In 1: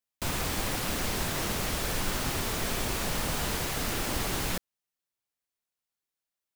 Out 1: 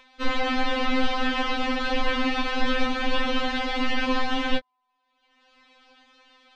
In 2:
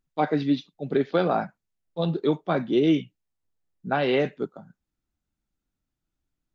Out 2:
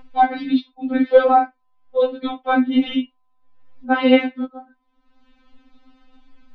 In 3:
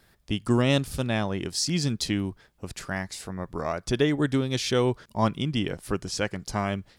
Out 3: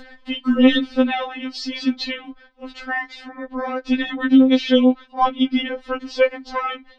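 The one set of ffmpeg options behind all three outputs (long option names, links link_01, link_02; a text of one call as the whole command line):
ffmpeg -i in.wav -af "lowpass=frequency=3700:width=0.5412,lowpass=frequency=3700:width=1.3066,acompressor=mode=upward:threshold=-39dB:ratio=2.5,apsyclip=13dB,aeval=exprs='val(0)+0.0224*sin(2*PI*930*n/s)':channel_layout=same,afftfilt=real='re*3.46*eq(mod(b,12),0)':imag='im*3.46*eq(mod(b,12),0)':win_size=2048:overlap=0.75,volume=-3dB" out.wav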